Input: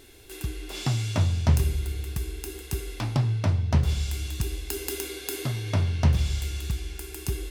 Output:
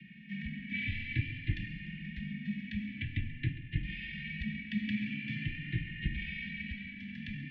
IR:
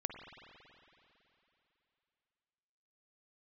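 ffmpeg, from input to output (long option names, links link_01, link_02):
-filter_complex "[0:a]equalizer=frequency=1500:width_type=o:width=0.43:gain=-12.5,acrossover=split=470|1800[link_01][link_02][link_03];[link_02]acompressor=threshold=-52dB:ratio=16[link_04];[link_01][link_04][link_03]amix=inputs=3:normalize=0,asetrate=30296,aresample=44100,atempo=1.45565,asuperstop=centerf=830:order=20:qfactor=0.58,asplit=2[link_05][link_06];[1:a]atrim=start_sample=2205,adelay=135[link_07];[link_06][link_07]afir=irnorm=-1:irlink=0,volume=-15dB[link_08];[link_05][link_08]amix=inputs=2:normalize=0,highpass=frequency=160:width_type=q:width=0.5412,highpass=frequency=160:width_type=q:width=1.307,lowpass=frequency=2800:width_type=q:width=0.5176,lowpass=frequency=2800:width_type=q:width=0.7071,lowpass=frequency=2800:width_type=q:width=1.932,afreqshift=-63,asplit=2[link_09][link_10];[link_10]adelay=2.8,afreqshift=0.49[link_11];[link_09][link_11]amix=inputs=2:normalize=1,volume=6.5dB"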